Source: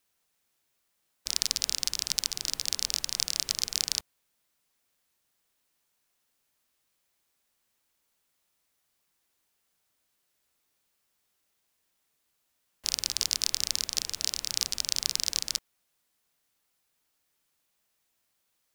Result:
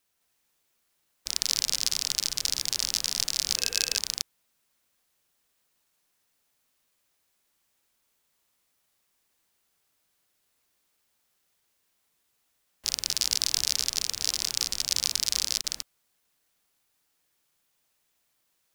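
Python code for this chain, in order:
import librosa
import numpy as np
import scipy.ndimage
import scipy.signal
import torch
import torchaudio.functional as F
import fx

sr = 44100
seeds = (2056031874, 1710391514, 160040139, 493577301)

y = fx.reverse_delay(x, sr, ms=211, wet_db=-1.0)
y = fx.small_body(y, sr, hz=(480.0, 1600.0, 2600.0), ring_ms=45, db=15, at=(3.56, 3.97))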